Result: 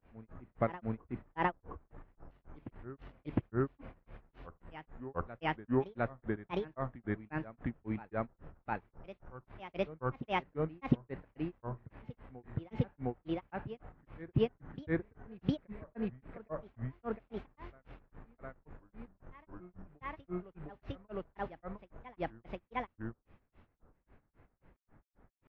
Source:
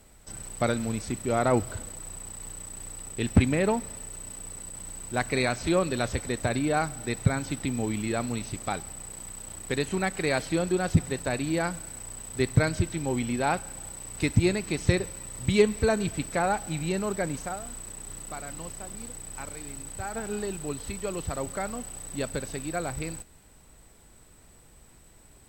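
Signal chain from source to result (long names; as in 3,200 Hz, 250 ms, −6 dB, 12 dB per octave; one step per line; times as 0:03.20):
low-pass filter 2,000 Hz 24 dB per octave
granular cloud 174 ms, grains 3.7 per second, spray 21 ms, pitch spread up and down by 7 semitones
backwards echo 708 ms −15 dB
level −4 dB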